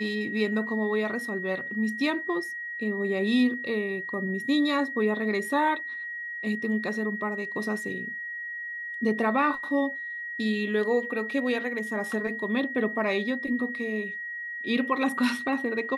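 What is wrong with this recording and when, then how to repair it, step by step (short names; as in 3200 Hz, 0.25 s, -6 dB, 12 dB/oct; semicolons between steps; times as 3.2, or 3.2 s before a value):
tone 1900 Hz -33 dBFS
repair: notch 1900 Hz, Q 30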